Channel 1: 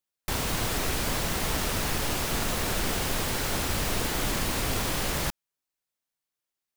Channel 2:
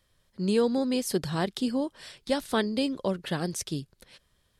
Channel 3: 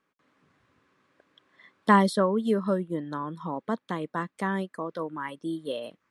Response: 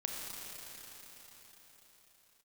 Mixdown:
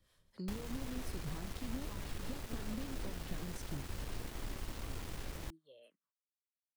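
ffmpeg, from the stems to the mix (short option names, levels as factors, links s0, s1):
-filter_complex "[0:a]lowpass=f=3200:p=1,equalizer=f=180:t=o:w=1.8:g=-8.5,acrusher=bits=4:mix=0:aa=0.000001,adelay=200,volume=0.355[s0];[1:a]acompressor=threshold=0.0316:ratio=6,volume=1[s1];[2:a]lowshelf=f=430:g=-6,asplit=2[s2][s3];[s3]afreqshift=-2.4[s4];[s2][s4]amix=inputs=2:normalize=1,volume=0.133[s5];[s1][s5]amix=inputs=2:normalize=0,acrossover=split=410[s6][s7];[s6]aeval=exprs='val(0)*(1-0.7/2+0.7/2*cos(2*PI*4*n/s))':c=same[s8];[s7]aeval=exprs='val(0)*(1-0.7/2-0.7/2*cos(2*PI*4*n/s))':c=same[s9];[s8][s9]amix=inputs=2:normalize=0,acompressor=threshold=0.00794:ratio=2.5,volume=1[s10];[s0][s10]amix=inputs=2:normalize=0,acrossover=split=340[s11][s12];[s12]acompressor=threshold=0.00251:ratio=3[s13];[s11][s13]amix=inputs=2:normalize=0"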